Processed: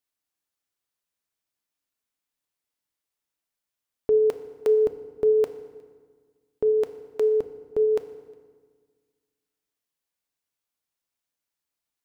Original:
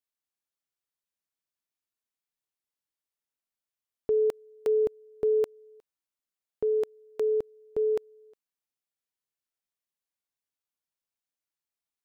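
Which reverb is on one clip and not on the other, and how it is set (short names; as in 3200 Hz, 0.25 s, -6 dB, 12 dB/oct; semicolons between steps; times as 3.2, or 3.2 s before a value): FDN reverb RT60 1.6 s, low-frequency decay 1.3×, high-frequency decay 0.7×, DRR 9.5 dB; gain +4.5 dB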